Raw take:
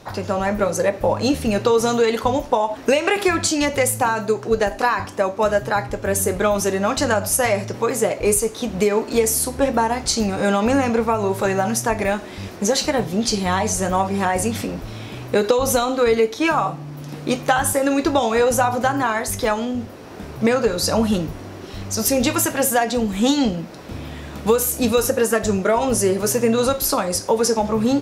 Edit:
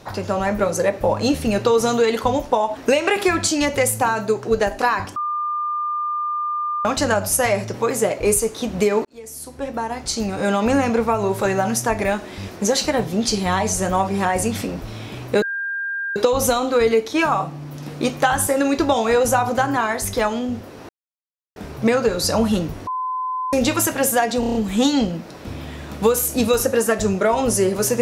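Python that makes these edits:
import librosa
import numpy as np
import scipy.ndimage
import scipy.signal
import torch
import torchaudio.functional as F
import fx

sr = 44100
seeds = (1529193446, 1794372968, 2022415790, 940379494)

y = fx.edit(x, sr, fx.bleep(start_s=5.16, length_s=1.69, hz=1200.0, db=-20.5),
    fx.fade_in_span(start_s=9.05, length_s=1.68),
    fx.insert_tone(at_s=15.42, length_s=0.74, hz=1600.0, db=-22.5),
    fx.insert_silence(at_s=20.15, length_s=0.67),
    fx.bleep(start_s=21.46, length_s=0.66, hz=1020.0, db=-21.5),
    fx.stutter(start_s=22.99, slice_s=0.03, count=6), tone=tone)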